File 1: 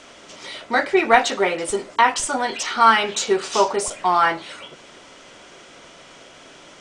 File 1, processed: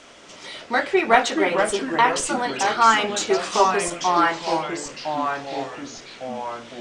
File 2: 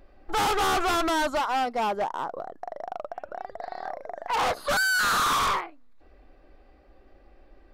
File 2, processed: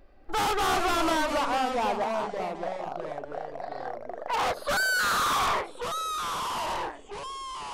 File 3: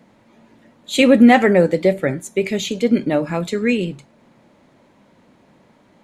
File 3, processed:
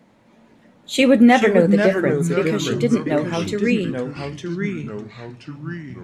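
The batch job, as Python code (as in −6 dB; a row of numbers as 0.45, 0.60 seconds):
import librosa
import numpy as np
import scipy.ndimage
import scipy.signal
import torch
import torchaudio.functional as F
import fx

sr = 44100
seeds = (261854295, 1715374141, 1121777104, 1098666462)

y = fx.echo_pitch(x, sr, ms=245, semitones=-3, count=3, db_per_echo=-6.0)
y = y * 10.0 ** (-2.0 / 20.0)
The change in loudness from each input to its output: −2.0, −2.5, −1.5 LU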